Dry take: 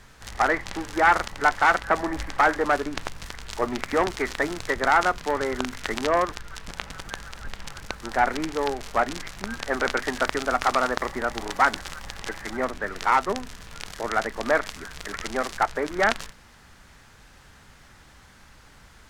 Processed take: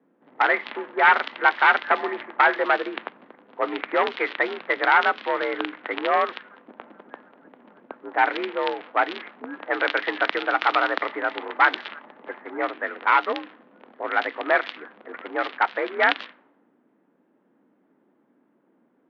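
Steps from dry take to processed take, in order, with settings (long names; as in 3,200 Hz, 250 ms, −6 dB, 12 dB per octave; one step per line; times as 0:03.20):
high-shelf EQ 2,800 Hz +11.5 dB
single-sideband voice off tune +54 Hz 190–3,500 Hz
low-pass that shuts in the quiet parts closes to 330 Hz, open at −18.5 dBFS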